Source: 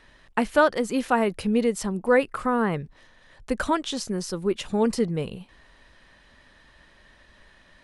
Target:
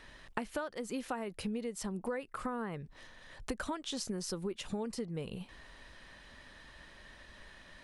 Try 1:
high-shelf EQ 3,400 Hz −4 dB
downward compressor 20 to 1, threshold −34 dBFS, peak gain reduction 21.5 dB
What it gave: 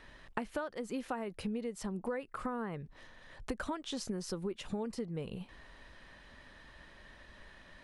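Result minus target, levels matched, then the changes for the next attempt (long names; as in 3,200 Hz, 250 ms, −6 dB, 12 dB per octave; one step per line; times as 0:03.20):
8,000 Hz band −4.5 dB
change: high-shelf EQ 3,400 Hz +2.5 dB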